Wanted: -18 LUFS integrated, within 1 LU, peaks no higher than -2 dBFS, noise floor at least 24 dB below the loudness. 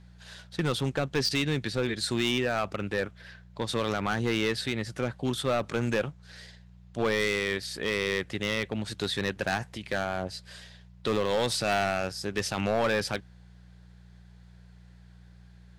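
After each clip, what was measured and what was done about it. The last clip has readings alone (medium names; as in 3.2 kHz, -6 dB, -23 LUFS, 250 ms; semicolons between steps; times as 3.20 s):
clipped samples 1.3%; clipping level -20.5 dBFS; hum 60 Hz; highest harmonic 180 Hz; hum level -51 dBFS; loudness -29.5 LUFS; peak level -20.5 dBFS; loudness target -18.0 LUFS
-> clip repair -20.5 dBFS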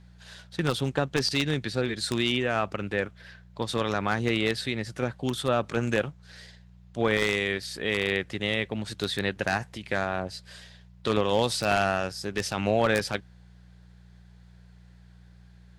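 clipped samples 0.0%; hum 60 Hz; highest harmonic 180 Hz; hum level -51 dBFS
-> de-hum 60 Hz, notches 3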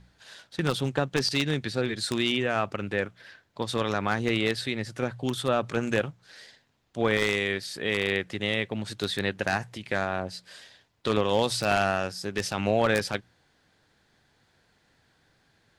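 hum not found; loudness -28.0 LUFS; peak level -11.0 dBFS; loudness target -18.0 LUFS
-> trim +10 dB; peak limiter -2 dBFS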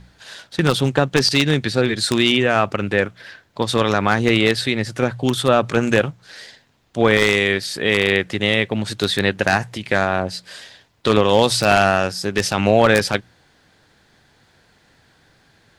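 loudness -18.0 LUFS; peak level -2.0 dBFS; noise floor -57 dBFS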